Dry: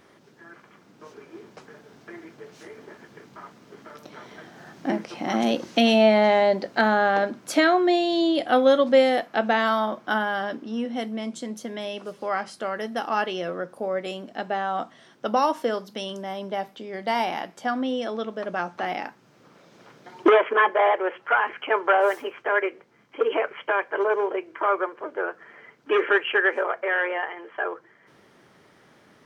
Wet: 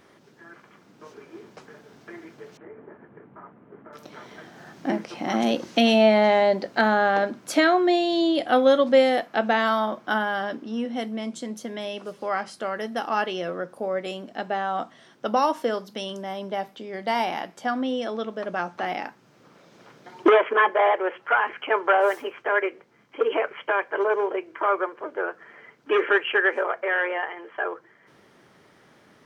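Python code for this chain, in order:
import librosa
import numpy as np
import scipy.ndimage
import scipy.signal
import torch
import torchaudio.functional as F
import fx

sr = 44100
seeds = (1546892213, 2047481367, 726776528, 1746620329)

y = fx.gaussian_blur(x, sr, sigma=4.8, at=(2.57, 3.93))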